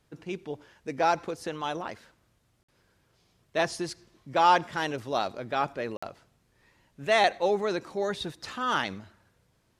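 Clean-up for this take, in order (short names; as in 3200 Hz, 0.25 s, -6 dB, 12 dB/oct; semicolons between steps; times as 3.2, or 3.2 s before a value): interpolate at 2.63/5.97, 55 ms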